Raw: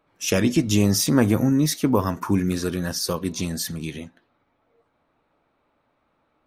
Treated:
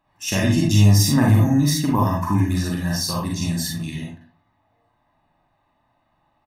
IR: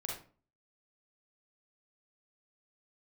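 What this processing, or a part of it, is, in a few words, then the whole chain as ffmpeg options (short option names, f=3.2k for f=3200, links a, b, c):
microphone above a desk: -filter_complex "[0:a]aecho=1:1:1.1:0.78[a];[1:a]atrim=start_sample=2205[b];[a][b]afir=irnorm=-1:irlink=0"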